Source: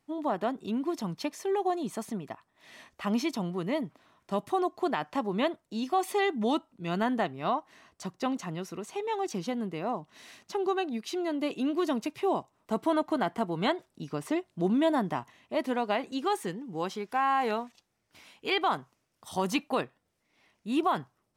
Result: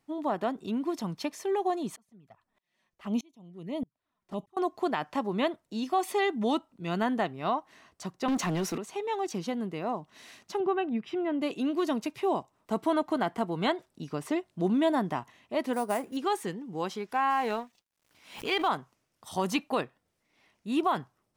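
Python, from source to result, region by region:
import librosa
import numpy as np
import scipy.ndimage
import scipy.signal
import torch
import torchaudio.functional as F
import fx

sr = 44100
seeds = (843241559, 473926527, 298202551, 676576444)

y = fx.chain(x, sr, fx.low_shelf(hz=160.0, db=8.0),
    fx.env_flanger(rest_ms=7.0, full_db=-26.0),
    fx.tremolo_decay(direction='swelling', hz=1.6, depth_db=33), at=(1.96, 4.57))
y = fx.chain(y, sr, fx.highpass(hz=160.0, slope=24),
    fx.leveller(passes=3), at=(8.28, 8.78))
y = fx.chain(y, sr, fx.savgol(points=25),
    fx.peak_eq(hz=140.0, db=15.0, octaves=0.73), at=(10.6, 11.42))
y = fx.chain(y, sr, fx.peak_eq(hz=4000.0, db=-14.0, octaves=1.3),
    fx.sample_hold(seeds[0], rate_hz=9700.0, jitter_pct=0), at=(15.73, 16.17))
y = fx.chain(y, sr, fx.law_mismatch(coded='A'),
    fx.pre_swell(db_per_s=110.0), at=(17.3, 18.68))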